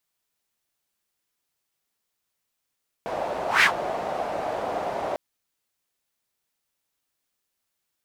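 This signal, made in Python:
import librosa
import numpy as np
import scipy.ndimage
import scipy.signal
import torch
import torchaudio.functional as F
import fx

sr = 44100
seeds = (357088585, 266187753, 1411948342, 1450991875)

y = fx.whoosh(sr, seeds[0], length_s=2.1, peak_s=0.57, rise_s=0.16, fall_s=0.11, ends_hz=680.0, peak_hz=2100.0, q=3.2, swell_db=12.5)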